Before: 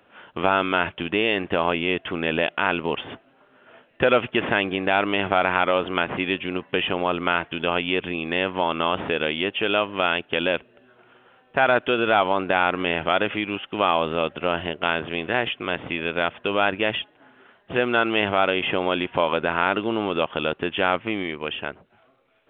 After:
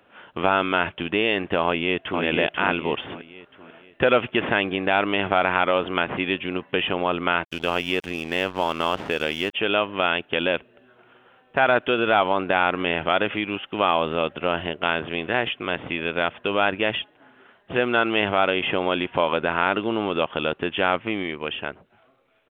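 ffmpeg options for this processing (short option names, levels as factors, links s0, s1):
-filter_complex "[0:a]asplit=2[s0][s1];[s1]afade=t=in:st=1.64:d=0.01,afade=t=out:st=2.23:d=0.01,aecho=0:1:490|980|1470|1960|2450:0.595662|0.238265|0.0953059|0.0381224|0.015249[s2];[s0][s2]amix=inputs=2:normalize=0,asplit=3[s3][s4][s5];[s3]afade=t=out:st=7.43:d=0.02[s6];[s4]aeval=exprs='sgn(val(0))*max(abs(val(0))-0.0126,0)':c=same,afade=t=in:st=7.43:d=0.02,afade=t=out:st=9.53:d=0.02[s7];[s5]afade=t=in:st=9.53:d=0.02[s8];[s6][s7][s8]amix=inputs=3:normalize=0"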